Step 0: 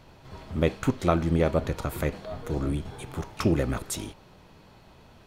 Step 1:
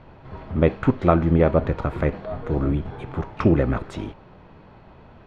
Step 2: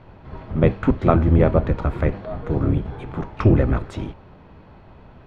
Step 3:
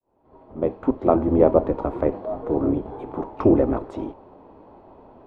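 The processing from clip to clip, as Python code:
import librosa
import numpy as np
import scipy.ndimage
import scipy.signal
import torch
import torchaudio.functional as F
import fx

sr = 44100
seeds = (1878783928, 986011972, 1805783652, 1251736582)

y1 = scipy.signal.sosfilt(scipy.signal.butter(2, 2000.0, 'lowpass', fs=sr, output='sos'), x)
y1 = y1 * librosa.db_to_amplitude(6.0)
y2 = fx.octave_divider(y1, sr, octaves=1, level_db=0.0)
y3 = fx.fade_in_head(y2, sr, length_s=1.46)
y3 = fx.band_shelf(y3, sr, hz=510.0, db=15.0, octaves=2.5)
y3 = y3 * librosa.db_to_amplitude(-11.5)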